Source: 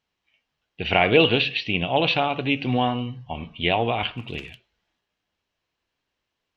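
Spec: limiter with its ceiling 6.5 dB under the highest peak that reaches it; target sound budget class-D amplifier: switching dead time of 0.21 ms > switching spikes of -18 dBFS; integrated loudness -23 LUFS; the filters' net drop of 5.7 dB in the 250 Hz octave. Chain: bell 250 Hz -7.5 dB; limiter -11 dBFS; switching dead time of 0.21 ms; switching spikes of -18 dBFS; gain +5.5 dB

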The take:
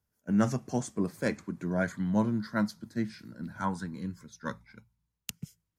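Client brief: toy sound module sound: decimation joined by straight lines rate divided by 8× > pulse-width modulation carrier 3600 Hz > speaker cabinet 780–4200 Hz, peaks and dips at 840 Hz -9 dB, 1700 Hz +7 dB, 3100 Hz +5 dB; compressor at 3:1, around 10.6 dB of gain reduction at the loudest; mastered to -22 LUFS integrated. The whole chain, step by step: compressor 3:1, threshold -36 dBFS; decimation joined by straight lines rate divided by 8×; pulse-width modulation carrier 3600 Hz; speaker cabinet 780–4200 Hz, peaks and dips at 840 Hz -9 dB, 1700 Hz +7 dB, 3100 Hz +5 dB; gain +13 dB

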